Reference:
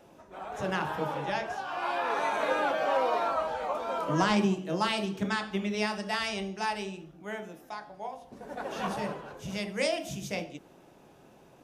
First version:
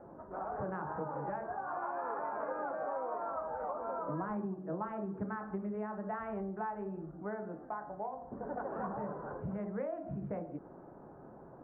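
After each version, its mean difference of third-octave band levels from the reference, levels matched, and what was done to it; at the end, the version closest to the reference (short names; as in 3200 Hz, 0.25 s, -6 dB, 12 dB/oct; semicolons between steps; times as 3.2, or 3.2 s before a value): 10.5 dB: Wiener smoothing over 9 samples; steep low-pass 1500 Hz 36 dB/oct; compressor 6:1, threshold -40 dBFS, peak gain reduction 17 dB; gain +4 dB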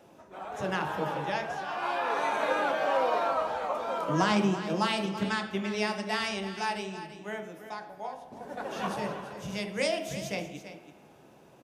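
2.0 dB: HPF 68 Hz; echo 0.334 s -12 dB; spring tank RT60 1.6 s, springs 45 ms, chirp 70 ms, DRR 13 dB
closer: second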